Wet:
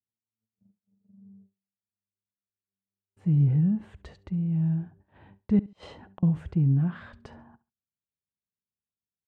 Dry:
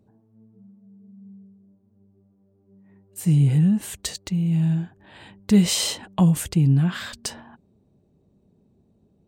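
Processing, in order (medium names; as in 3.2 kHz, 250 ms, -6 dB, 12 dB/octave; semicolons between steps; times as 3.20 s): gate -47 dBFS, range -39 dB; low-pass 1.4 kHz 12 dB/octave; peaking EQ 76 Hz +7.5 dB 1.6 oct; 5.59–6.23 s: inverted gate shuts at -26 dBFS, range -34 dB; feedback delay 69 ms, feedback 24%, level -20 dB; trim -7.5 dB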